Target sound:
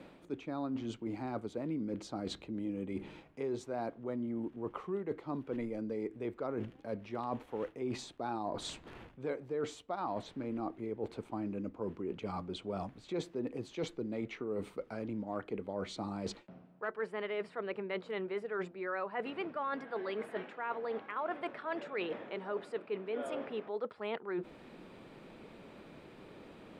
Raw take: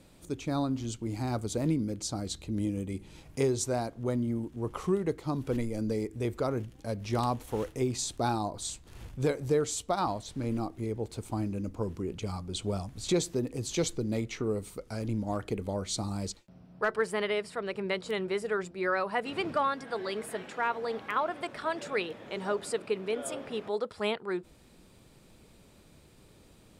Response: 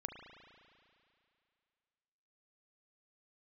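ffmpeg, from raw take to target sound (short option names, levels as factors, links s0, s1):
-filter_complex "[0:a]acrossover=split=180 3100:gain=0.158 1 0.0794[s0][s1][s2];[s0][s1][s2]amix=inputs=3:normalize=0,areverse,acompressor=threshold=0.00562:ratio=5,areverse,volume=2.66"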